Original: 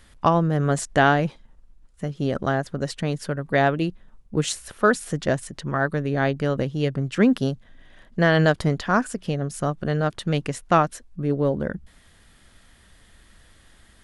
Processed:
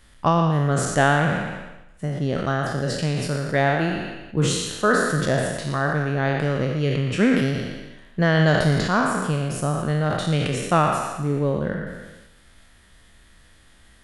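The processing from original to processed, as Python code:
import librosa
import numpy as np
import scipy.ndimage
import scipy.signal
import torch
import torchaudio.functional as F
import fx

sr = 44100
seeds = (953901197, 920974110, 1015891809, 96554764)

p1 = fx.spec_trails(x, sr, decay_s=1.08)
p2 = fx.dynamic_eq(p1, sr, hz=150.0, q=2.3, threshold_db=-36.0, ratio=4.0, max_db=5)
p3 = p2 + fx.echo_banded(p2, sr, ms=117, feedback_pct=43, hz=2400.0, wet_db=-6, dry=0)
p4 = fx.sustainer(p3, sr, db_per_s=47.0)
y = p4 * 10.0 ** (-3.0 / 20.0)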